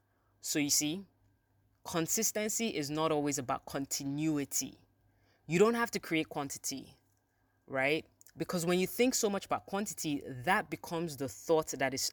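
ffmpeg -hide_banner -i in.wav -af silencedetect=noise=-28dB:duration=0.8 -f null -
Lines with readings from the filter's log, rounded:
silence_start: 0.93
silence_end: 1.88 | silence_duration: 0.95
silence_start: 4.61
silence_end: 5.52 | silence_duration: 0.92
silence_start: 6.70
silence_end: 7.76 | silence_duration: 1.06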